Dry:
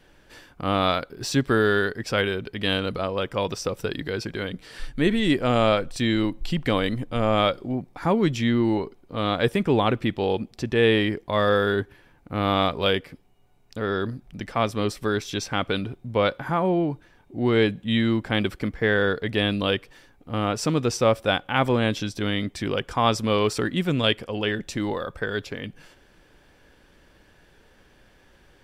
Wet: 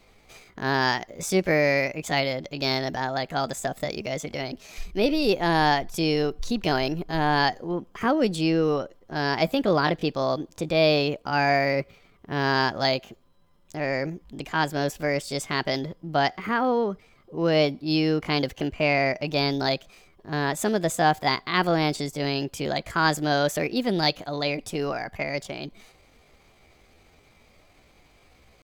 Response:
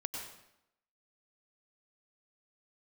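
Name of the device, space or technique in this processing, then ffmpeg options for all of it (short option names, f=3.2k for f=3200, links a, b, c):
chipmunk voice: -af "asetrate=60591,aresample=44100,atempo=0.727827,volume=-1dB"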